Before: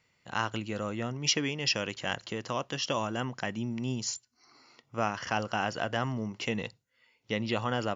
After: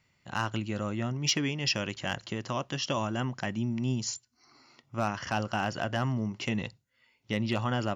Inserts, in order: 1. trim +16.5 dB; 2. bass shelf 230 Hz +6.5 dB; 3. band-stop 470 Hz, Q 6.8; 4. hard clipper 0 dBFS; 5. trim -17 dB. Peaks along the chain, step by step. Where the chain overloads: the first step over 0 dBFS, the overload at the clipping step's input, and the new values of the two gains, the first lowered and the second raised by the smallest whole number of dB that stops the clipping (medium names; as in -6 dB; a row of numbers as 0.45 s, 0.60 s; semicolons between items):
+3.5 dBFS, +4.5 dBFS, +4.0 dBFS, 0.0 dBFS, -17.0 dBFS; step 1, 4.0 dB; step 1 +12.5 dB, step 5 -13 dB